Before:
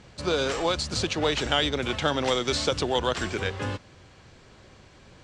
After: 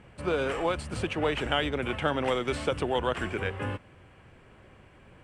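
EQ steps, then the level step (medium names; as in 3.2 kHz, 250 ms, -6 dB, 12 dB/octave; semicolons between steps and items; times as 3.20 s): high-order bell 5.1 kHz -15.5 dB 1.2 oct; -2.0 dB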